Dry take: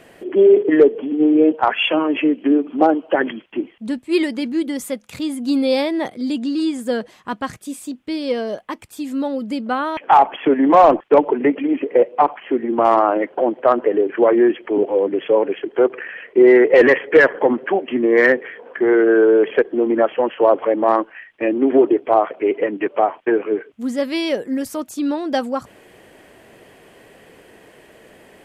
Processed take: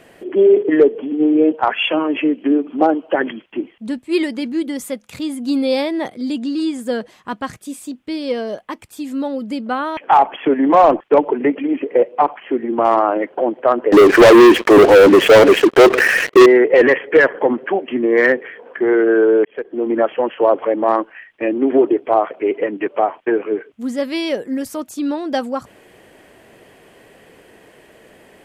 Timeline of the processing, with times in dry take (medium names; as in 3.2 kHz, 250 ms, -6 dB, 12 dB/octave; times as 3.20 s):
13.92–16.46 s: waveshaping leveller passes 5
19.45–19.94 s: fade in